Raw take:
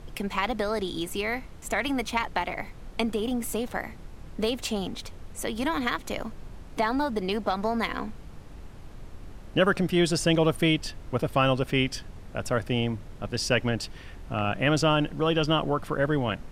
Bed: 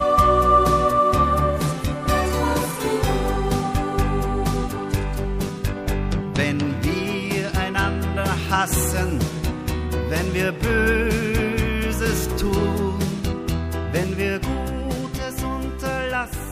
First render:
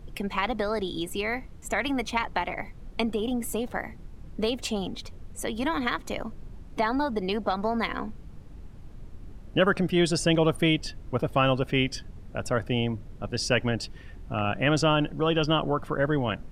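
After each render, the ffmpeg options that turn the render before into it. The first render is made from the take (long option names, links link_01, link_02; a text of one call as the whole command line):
ffmpeg -i in.wav -af "afftdn=noise_reduction=8:noise_floor=-44" out.wav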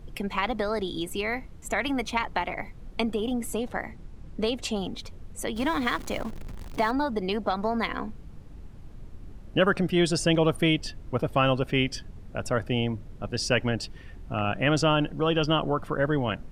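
ffmpeg -i in.wav -filter_complex "[0:a]asettb=1/sr,asplit=3[link_01][link_02][link_03];[link_01]atrim=end=3.414[link_04];[link_02]atrim=start=3.41:end=4.74,asetpts=PTS-STARTPTS,afade=type=in:duration=0.004:curve=qsin,afade=type=out:start_time=1.326:duration=0.004:curve=qsin,lowpass=11000[link_05];[link_03]atrim=start=4.736[link_06];[link_04][link_05]acrossfade=duration=0.004:curve1=hsin:curve2=qsin[link_07];[link_07][link_06]acrossfade=duration=0.004:curve1=qsin:curve2=hsin,asettb=1/sr,asplit=3[link_08][link_09][link_10];[link_08]atrim=end=5.564[link_11];[link_09]atrim=start=5.56:end=6.91,asetpts=PTS-STARTPTS,afade=type=in:duration=0.004:curve=qsin,afade=type=out:start_time=1.346:duration=0.004:curve=qsin,aeval=exprs='val(0)+0.5*0.0133*sgn(val(0))':channel_layout=same[link_12];[link_10]atrim=start=6.906[link_13];[link_11][link_12]acrossfade=duration=0.004:curve1=hsin:curve2=qsin[link_14];[link_14][link_13]acrossfade=duration=0.004:curve1=qsin:curve2=hsin" out.wav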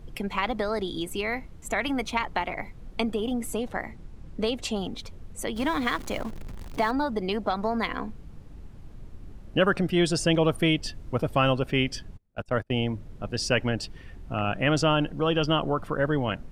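ffmpeg -i in.wav -filter_complex "[0:a]asettb=1/sr,asplit=3[link_01][link_02][link_03];[link_01]atrim=end=10.844[link_04];[link_02]atrim=start=10.84:end=11.52,asetpts=PTS-STARTPTS,afade=type=in:duration=0.004:curve=qsin,afade=type=out:start_time=0.676:duration=0.004:curve=qsin,bass=frequency=250:gain=1,treble=frequency=4000:gain=3[link_05];[link_03]atrim=start=11.516[link_06];[link_04][link_05]acrossfade=duration=0.004:curve1=hsin:curve2=qsin[link_07];[link_07][link_06]acrossfade=duration=0.004:curve1=qsin:curve2=hsin,asplit=3[link_08][link_09][link_10];[link_08]afade=type=out:start_time=12.16:duration=0.02[link_11];[link_09]agate=range=-31dB:threshold=-31dB:ratio=16:release=100:detection=peak,afade=type=in:start_time=12.16:duration=0.02,afade=type=out:start_time=12.79:duration=0.02[link_12];[link_10]afade=type=in:start_time=12.79:duration=0.02[link_13];[link_11][link_12][link_13]amix=inputs=3:normalize=0" out.wav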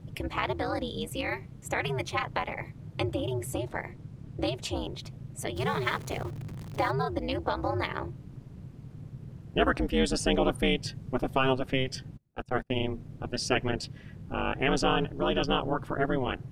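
ffmpeg -i in.wav -af "aeval=exprs='val(0)*sin(2*PI*130*n/s)':channel_layout=same" out.wav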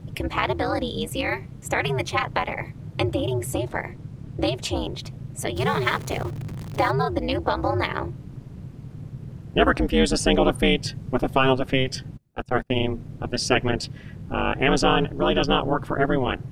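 ffmpeg -i in.wav -af "volume=6.5dB" out.wav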